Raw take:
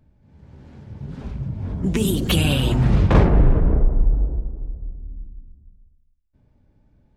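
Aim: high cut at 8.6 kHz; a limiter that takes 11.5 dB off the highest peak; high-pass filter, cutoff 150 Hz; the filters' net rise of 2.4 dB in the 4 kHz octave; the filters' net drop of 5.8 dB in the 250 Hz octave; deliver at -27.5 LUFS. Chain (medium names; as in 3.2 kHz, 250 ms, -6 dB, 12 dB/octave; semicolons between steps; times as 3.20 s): high-pass 150 Hz; low-pass 8.6 kHz; peaking EQ 250 Hz -7 dB; peaking EQ 4 kHz +3.5 dB; trim +1.5 dB; peak limiter -16 dBFS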